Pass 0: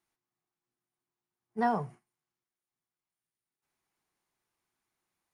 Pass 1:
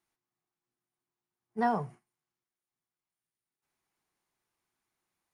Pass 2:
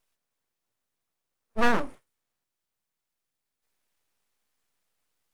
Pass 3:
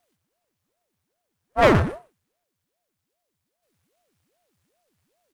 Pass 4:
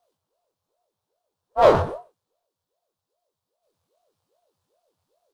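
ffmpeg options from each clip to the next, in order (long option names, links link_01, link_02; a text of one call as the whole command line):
ffmpeg -i in.wav -af anull out.wav
ffmpeg -i in.wav -af "aeval=exprs='abs(val(0))':channel_layout=same,volume=8dB" out.wav
ffmpeg -i in.wav -filter_complex "[0:a]asplit=2[link_01][link_02];[link_02]adelay=122.4,volume=-14dB,highshelf=frequency=4000:gain=-2.76[link_03];[link_01][link_03]amix=inputs=2:normalize=0,aeval=exprs='val(0)*sin(2*PI*400*n/s+400*0.8/2.5*sin(2*PI*2.5*n/s))':channel_layout=same,volume=7dB" out.wav
ffmpeg -i in.wav -af "equalizer=frequency=250:width_type=o:width=1:gain=-7,equalizer=frequency=500:width_type=o:width=1:gain=10,equalizer=frequency=1000:width_type=o:width=1:gain=9,equalizer=frequency=2000:width_type=o:width=1:gain=-8,equalizer=frequency=4000:width_type=o:width=1:gain=6,flanger=delay=18.5:depth=4.9:speed=0.92,volume=-3dB" out.wav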